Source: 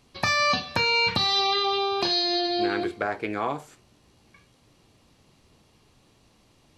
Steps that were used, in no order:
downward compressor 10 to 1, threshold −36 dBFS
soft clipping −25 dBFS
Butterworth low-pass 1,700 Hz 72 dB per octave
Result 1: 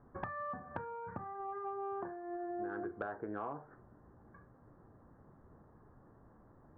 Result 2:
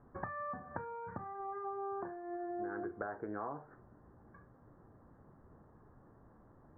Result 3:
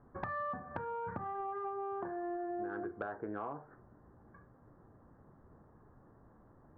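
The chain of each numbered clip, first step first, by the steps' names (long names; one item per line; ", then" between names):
downward compressor, then Butterworth low-pass, then soft clipping
downward compressor, then soft clipping, then Butterworth low-pass
Butterworth low-pass, then downward compressor, then soft clipping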